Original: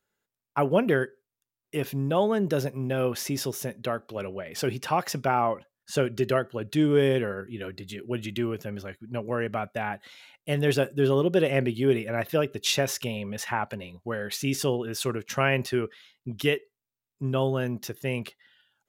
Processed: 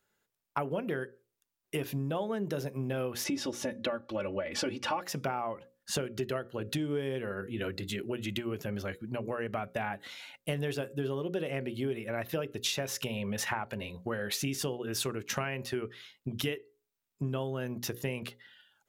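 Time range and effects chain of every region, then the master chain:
0:03.24–0:05.02: high-frequency loss of the air 74 metres + comb filter 3.5 ms, depth 99%
whole clip: downward compressor 10 to 1, threshold −33 dBFS; mains-hum notches 60/120/180/240/300/360/420/480/540 Hz; level +3.5 dB

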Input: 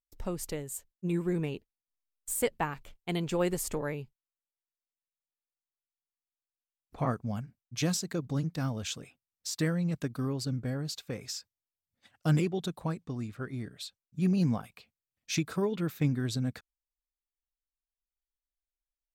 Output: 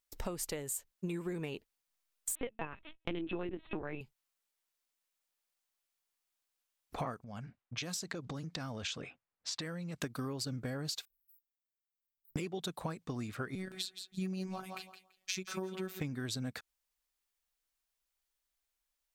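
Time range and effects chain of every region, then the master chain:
0:02.35–0:04.01: dynamic equaliser 420 Hz, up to −6 dB, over −49 dBFS, Q 6.7 + hollow resonant body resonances 220/320/2,600 Hz, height 15 dB, ringing for 85 ms + linear-prediction vocoder at 8 kHz pitch kept
0:07.24–0:10.02: low-pass that shuts in the quiet parts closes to 1,400 Hz, open at −26.5 dBFS + downward compressor 10 to 1, threshold −41 dBFS
0:11.05–0:12.36: inverse Chebyshev band-stop filter 100–6,800 Hz, stop band 70 dB + tube saturation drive 48 dB, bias 0.5
0:13.55–0:16.00: phases set to zero 188 Hz + feedback echo with a high-pass in the loop 168 ms, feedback 20%, high-pass 160 Hz, level −11.5 dB
whole clip: low-shelf EQ 350 Hz −9.5 dB; downward compressor 12 to 1, threshold −45 dBFS; level +10 dB

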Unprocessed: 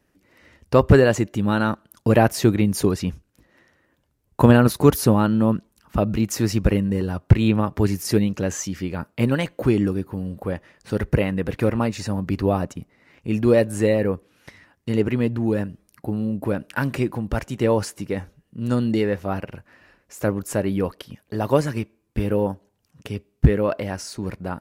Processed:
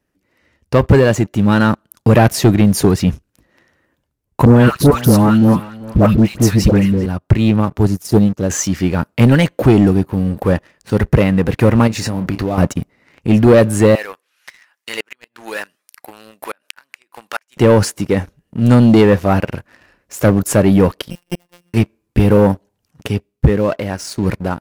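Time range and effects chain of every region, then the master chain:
0:04.45–0:07.06: notch filter 7,000 Hz, Q 22 + all-pass dispersion highs, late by 116 ms, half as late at 1,000 Hz + single-tap delay 391 ms −20.5 dB
0:07.77–0:08.50: parametric band 2,200 Hz −14 dB 0.86 octaves + expander for the loud parts, over −37 dBFS
0:11.87–0:12.58: double-tracking delay 27 ms −10.5 dB + downward compressor, threshold −28 dBFS
0:13.95–0:17.57: high-pass filter 1,300 Hz + gate with flip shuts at −23 dBFS, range −26 dB
0:21.10–0:21.74: samples sorted by size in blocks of 16 samples + gate with flip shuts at −19 dBFS, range −36 dB + phases set to zero 175 Hz
whole clip: dynamic equaliser 140 Hz, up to +4 dB, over −27 dBFS, Q 0.84; automatic gain control gain up to 8 dB; leveller curve on the samples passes 2; level −1 dB

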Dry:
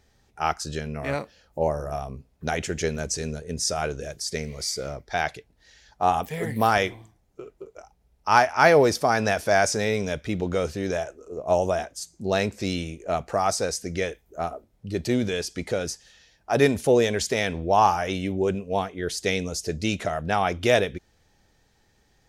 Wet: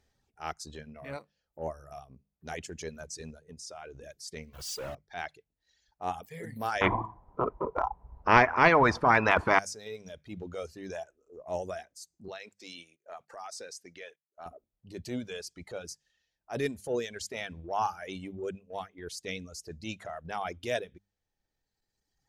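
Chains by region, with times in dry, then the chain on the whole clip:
0:03.51–0:04.03: low-pass filter 11,000 Hz + downward compressor 5 to 1, threshold −29 dBFS
0:04.53–0:04.95: log-companded quantiser 2 bits + multiband upward and downward expander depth 70%
0:06.81–0:09.59: low-pass with resonance 1,000 Hz, resonance Q 12 + every bin compressed towards the loudest bin 4 to 1
0:12.28–0:14.46: meter weighting curve A + noise gate −46 dBFS, range −15 dB + downward compressor 5 to 1, threshold −27 dBFS
whole clip: mains-hum notches 50/100/150/200 Hz; reverb reduction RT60 1.9 s; transient designer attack −7 dB, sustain −3 dB; level −9 dB

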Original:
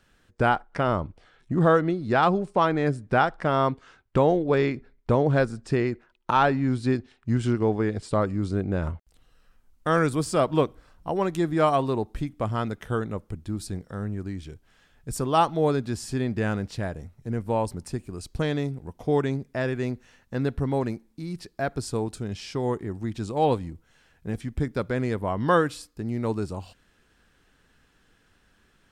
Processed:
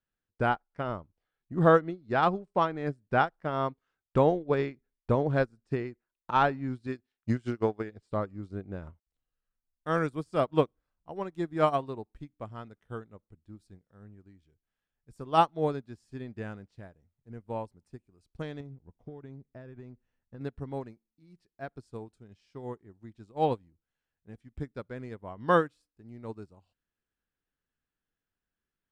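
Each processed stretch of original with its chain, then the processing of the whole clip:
0:06.87–0:07.92: transient designer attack +8 dB, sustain −1 dB + spectral tilt +1.5 dB per octave
0:18.60–0:20.41: spectral tilt −2 dB per octave + downward compressor 12 to 1, threshold −23 dBFS
whole clip: high-shelf EQ 5,800 Hz −7 dB; expander for the loud parts 2.5 to 1, over −35 dBFS

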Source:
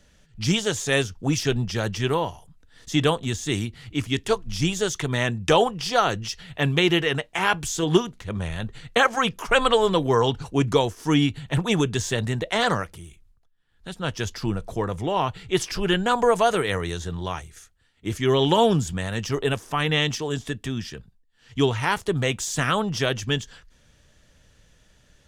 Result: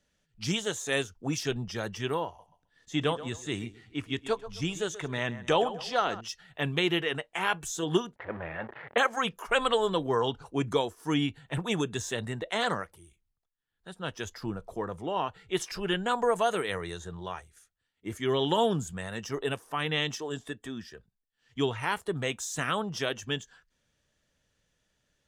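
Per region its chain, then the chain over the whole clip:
0:02.26–0:06.21: high-shelf EQ 7,900 Hz −8.5 dB + repeating echo 131 ms, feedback 35%, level −14 dB
0:08.16–0:08.98: converter with a step at zero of −28.5 dBFS + loudspeaker in its box 120–2,700 Hz, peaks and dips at 190 Hz −7 dB, 580 Hz +5 dB, 840 Hz +5 dB, 1,700 Hz +4 dB
whole clip: noise reduction from a noise print of the clip's start 8 dB; low-shelf EQ 100 Hz −9.5 dB; level −6.5 dB

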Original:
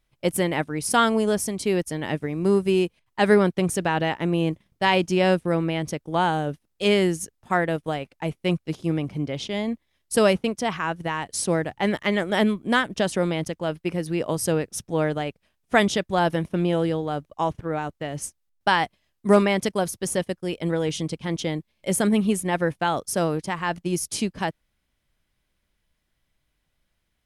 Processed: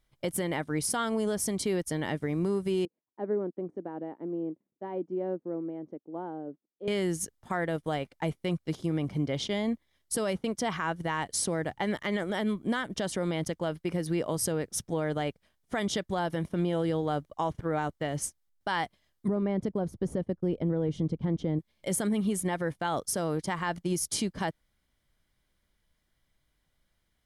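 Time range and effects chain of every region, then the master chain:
0:02.85–0:06.88: de-essing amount 55% + four-pole ladder band-pass 360 Hz, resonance 40%
0:19.28–0:21.59: low-pass filter 3,200 Hz 6 dB per octave + tilt shelving filter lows +9.5 dB, about 860 Hz
whole clip: notch filter 2,600 Hz, Q 7.6; downward compressor, threshold −22 dBFS; brickwall limiter −19 dBFS; level −1 dB

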